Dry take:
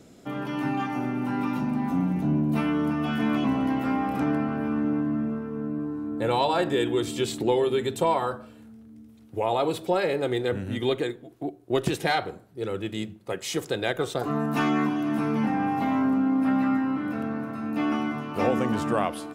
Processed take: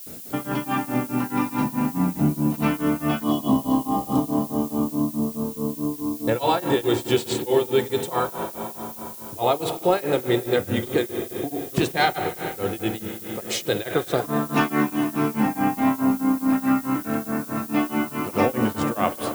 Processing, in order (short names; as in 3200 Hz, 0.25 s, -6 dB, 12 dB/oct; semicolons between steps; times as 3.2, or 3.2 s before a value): spring tank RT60 3.3 s, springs 42/46 ms, chirp 35 ms, DRR 8 dB; in parallel at +2.5 dB: compressor, threshold -34 dBFS, peak gain reduction 15 dB; on the sum: spectral gain 3.28–6.21, 1300–2900 Hz -21 dB; grains 0.243 s, grains 4.7/s, pitch spread up and down by 0 st; added noise violet -43 dBFS; gain +3.5 dB